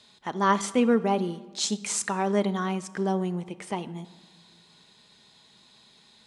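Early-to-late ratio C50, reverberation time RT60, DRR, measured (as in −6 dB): 17.0 dB, 1.5 s, 11.5 dB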